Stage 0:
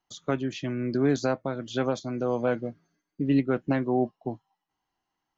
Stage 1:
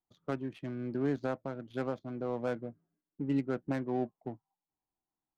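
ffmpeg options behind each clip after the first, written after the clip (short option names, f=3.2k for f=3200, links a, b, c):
-af "adynamicsmooth=sensitivity=4.5:basefreq=950,volume=-8dB"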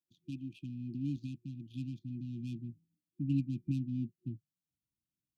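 -af "highpass=100,afftfilt=real='re*(1-between(b*sr/4096,360,2400))':imag='im*(1-between(b*sr/4096,360,2400))':win_size=4096:overlap=0.75,asubboost=boost=6.5:cutoff=160,volume=-3dB"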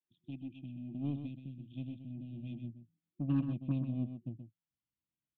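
-af "aresample=8000,aresample=44100,aeval=exprs='0.0794*(cos(1*acos(clip(val(0)/0.0794,-1,1)))-cos(1*PI/2))+0.00398*(cos(7*acos(clip(val(0)/0.0794,-1,1)))-cos(7*PI/2))+0.00112*(cos(8*acos(clip(val(0)/0.0794,-1,1)))-cos(8*PI/2))':c=same,aecho=1:1:127:0.376"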